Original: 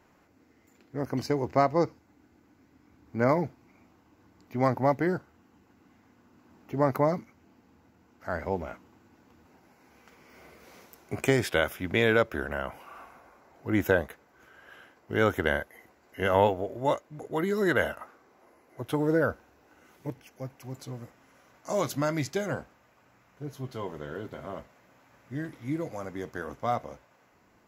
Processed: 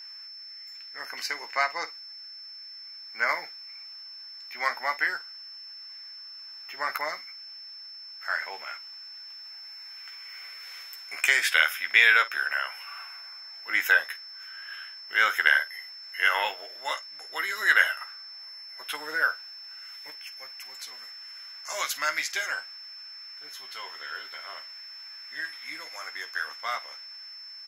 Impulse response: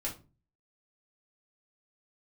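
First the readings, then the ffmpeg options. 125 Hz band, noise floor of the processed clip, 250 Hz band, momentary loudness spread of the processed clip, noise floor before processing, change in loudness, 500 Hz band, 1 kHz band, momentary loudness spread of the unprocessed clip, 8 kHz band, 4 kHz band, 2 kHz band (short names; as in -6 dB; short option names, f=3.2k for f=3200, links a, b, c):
under -35 dB, -44 dBFS, under -20 dB, 19 LU, -63 dBFS, +2.5 dB, -13.5 dB, -0.5 dB, 17 LU, +7.5 dB, +11.5 dB, +10.0 dB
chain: -af "highpass=f=1.8k:t=q:w=1.8,aecho=1:1:13|51:0.447|0.15,aeval=exprs='val(0)+0.00447*sin(2*PI*5300*n/s)':c=same,volume=6dB"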